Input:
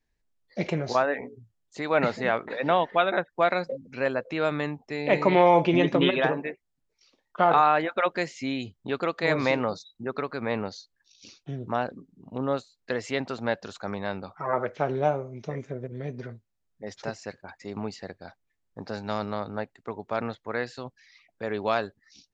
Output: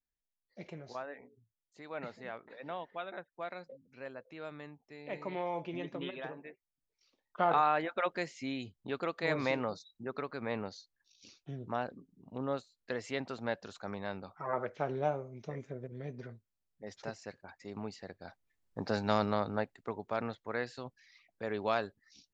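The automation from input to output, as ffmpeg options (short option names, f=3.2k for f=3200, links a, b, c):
-af "volume=1.5dB,afade=t=in:st=6.34:d=1.13:silence=0.298538,afade=t=in:st=18.07:d=0.87:silence=0.334965,afade=t=out:st=18.94:d=1.23:silence=0.421697"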